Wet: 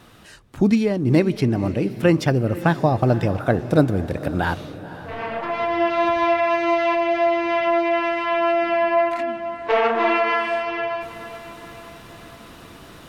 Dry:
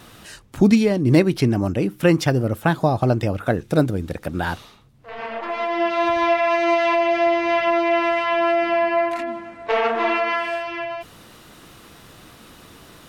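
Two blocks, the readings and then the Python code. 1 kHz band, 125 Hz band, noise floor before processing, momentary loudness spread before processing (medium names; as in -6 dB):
0.0 dB, 0.0 dB, -47 dBFS, 12 LU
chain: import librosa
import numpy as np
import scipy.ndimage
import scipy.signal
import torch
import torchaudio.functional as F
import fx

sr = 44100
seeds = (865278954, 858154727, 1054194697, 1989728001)

p1 = fx.high_shelf(x, sr, hz=4200.0, db=-6.0)
p2 = fx.rider(p1, sr, range_db=3, speed_s=2.0)
y = p2 + fx.echo_diffused(p2, sr, ms=506, feedback_pct=52, wet_db=-14.5, dry=0)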